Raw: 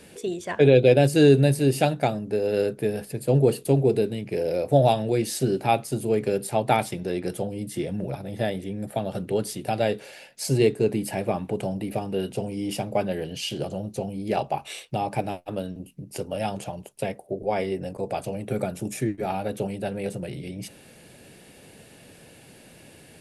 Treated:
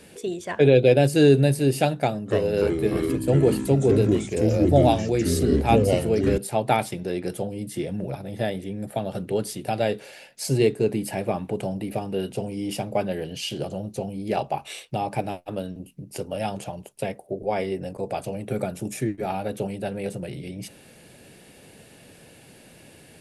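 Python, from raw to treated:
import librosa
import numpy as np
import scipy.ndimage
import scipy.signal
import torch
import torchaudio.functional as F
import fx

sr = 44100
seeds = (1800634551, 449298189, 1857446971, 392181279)

y = fx.echo_pitch(x, sr, ms=278, semitones=-4, count=3, db_per_echo=-3.0, at=(1.98, 6.38))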